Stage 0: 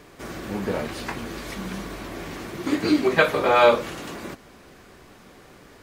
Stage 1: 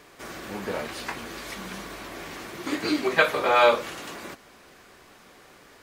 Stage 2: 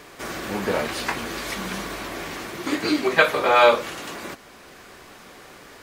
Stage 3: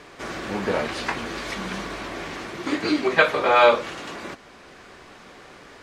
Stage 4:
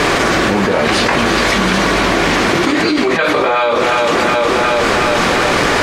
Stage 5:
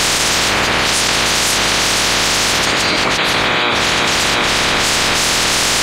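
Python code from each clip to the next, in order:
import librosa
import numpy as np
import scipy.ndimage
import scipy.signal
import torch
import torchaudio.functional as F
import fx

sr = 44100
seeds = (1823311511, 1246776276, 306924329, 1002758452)

y1 = fx.low_shelf(x, sr, hz=390.0, db=-10.0)
y2 = fx.rider(y1, sr, range_db=4, speed_s=2.0)
y2 = y2 * librosa.db_to_amplitude(3.0)
y3 = fx.air_absorb(y2, sr, metres=62.0)
y4 = fx.rider(y3, sr, range_db=4, speed_s=2.0)
y4 = fx.echo_feedback(y4, sr, ms=363, feedback_pct=57, wet_db=-13.0)
y4 = fx.env_flatten(y4, sr, amount_pct=100)
y4 = y4 * librosa.db_to_amplitude(-1.5)
y5 = fx.spec_clip(y4, sr, under_db=25)
y5 = y5 * librosa.db_to_amplitude(-1.0)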